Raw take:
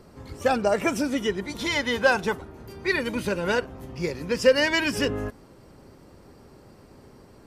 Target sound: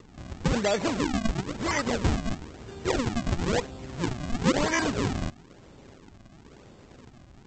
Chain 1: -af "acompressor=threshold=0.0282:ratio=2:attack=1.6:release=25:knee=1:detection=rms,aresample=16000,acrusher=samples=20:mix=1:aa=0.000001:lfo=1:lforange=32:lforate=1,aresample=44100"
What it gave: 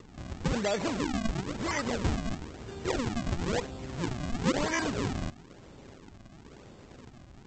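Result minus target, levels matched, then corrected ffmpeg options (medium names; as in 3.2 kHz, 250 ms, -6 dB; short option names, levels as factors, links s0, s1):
compression: peak gain reduction +4 dB
-af "acompressor=threshold=0.075:ratio=2:attack=1.6:release=25:knee=1:detection=rms,aresample=16000,acrusher=samples=20:mix=1:aa=0.000001:lfo=1:lforange=32:lforate=1,aresample=44100"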